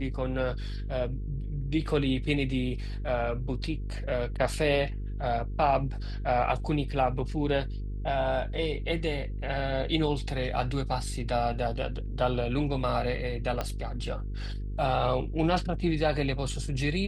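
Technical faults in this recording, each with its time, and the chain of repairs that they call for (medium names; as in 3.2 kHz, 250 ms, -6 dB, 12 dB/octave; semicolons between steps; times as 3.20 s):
buzz 50 Hz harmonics 9 -34 dBFS
13.61 s: pop -16 dBFS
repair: de-click; de-hum 50 Hz, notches 9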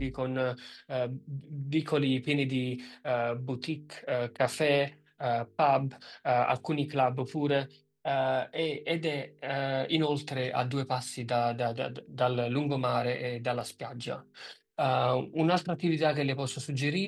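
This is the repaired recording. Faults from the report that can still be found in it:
13.61 s: pop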